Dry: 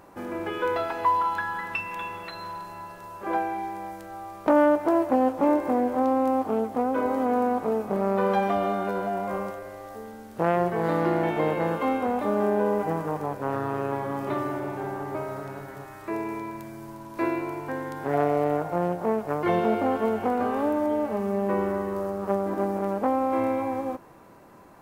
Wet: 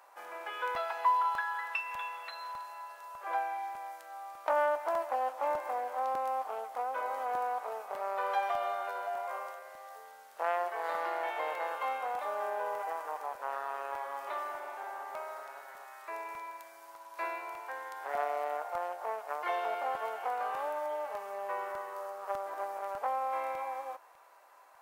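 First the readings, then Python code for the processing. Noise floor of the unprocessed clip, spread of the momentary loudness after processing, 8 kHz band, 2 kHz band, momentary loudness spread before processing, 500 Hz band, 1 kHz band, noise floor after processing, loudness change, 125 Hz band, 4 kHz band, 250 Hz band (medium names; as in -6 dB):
-44 dBFS, 12 LU, no reading, -4.5 dB, 14 LU, -12.0 dB, -5.0 dB, -54 dBFS, -9.5 dB, under -35 dB, -4.5 dB, -32.0 dB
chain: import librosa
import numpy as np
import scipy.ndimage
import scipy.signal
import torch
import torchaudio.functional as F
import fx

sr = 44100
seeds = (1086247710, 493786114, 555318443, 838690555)

y = scipy.signal.sosfilt(scipy.signal.butter(4, 660.0, 'highpass', fs=sr, output='sos'), x)
y = fx.buffer_crackle(y, sr, first_s=0.75, period_s=0.6, block=64, kind='repeat')
y = F.gain(torch.from_numpy(y), -4.5).numpy()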